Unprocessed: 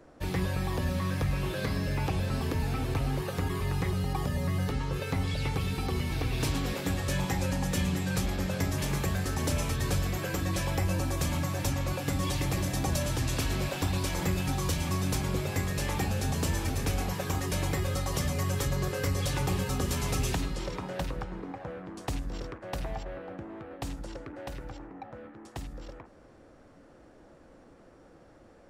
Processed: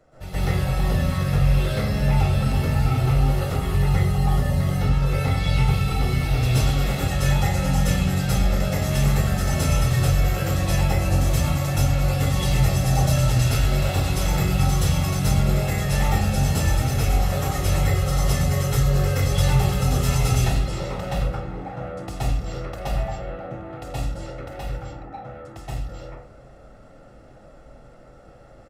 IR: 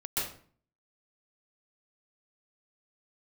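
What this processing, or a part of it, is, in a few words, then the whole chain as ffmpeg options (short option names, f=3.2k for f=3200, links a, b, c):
microphone above a desk: -filter_complex "[0:a]aecho=1:1:1.5:0.54[a];[1:a]atrim=start_sample=2205[b];[a][b]afir=irnorm=-1:irlink=0"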